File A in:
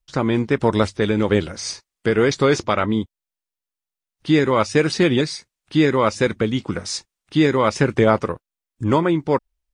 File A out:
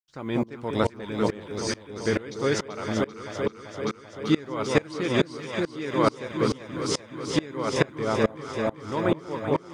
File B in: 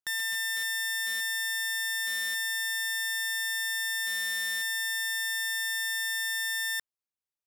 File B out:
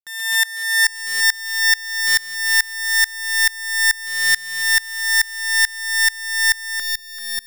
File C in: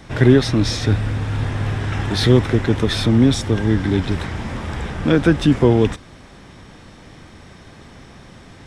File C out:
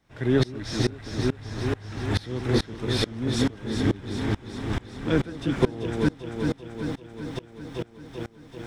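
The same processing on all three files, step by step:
low-shelf EQ 270 Hz −2.5 dB
bit reduction 10 bits
on a send: delay that swaps between a low-pass and a high-pass 194 ms, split 960 Hz, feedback 89%, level −4 dB
on the sum: tremolo with a ramp in dB swelling 2.3 Hz, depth 25 dB
normalise the peak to −6 dBFS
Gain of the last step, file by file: −2.0, +18.0, −3.0 decibels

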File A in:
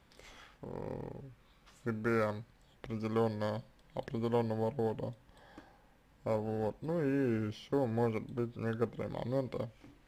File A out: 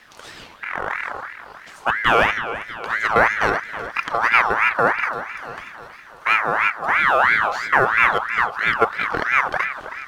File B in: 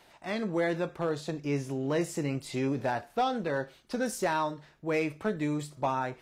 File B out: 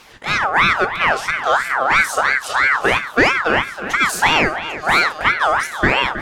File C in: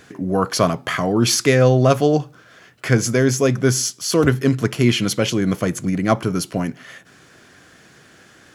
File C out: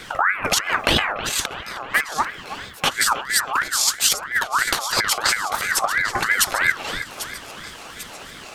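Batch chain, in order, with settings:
compressor whose output falls as the input rises −24 dBFS, ratio −0.5
on a send: echo with a time of its own for lows and highs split 2,400 Hz, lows 319 ms, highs 794 ms, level −12 dB
on the sum: ring modulator whose carrier an LFO sweeps 1,400 Hz, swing 35%, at 3 Hz
normalise the peak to −1.5 dBFS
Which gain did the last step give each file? +18.0, +16.5, +5.5 decibels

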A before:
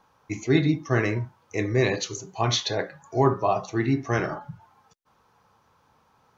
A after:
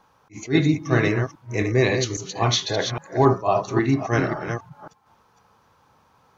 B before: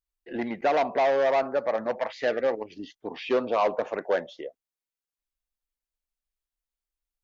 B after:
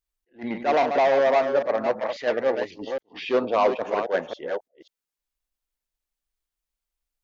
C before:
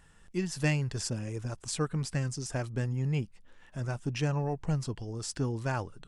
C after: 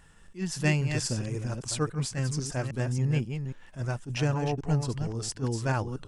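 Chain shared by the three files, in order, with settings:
delay that plays each chunk backwards 271 ms, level −7 dB
level that may rise only so fast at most 270 dB per second
level +3 dB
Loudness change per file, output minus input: +3.0, +2.5, +3.0 LU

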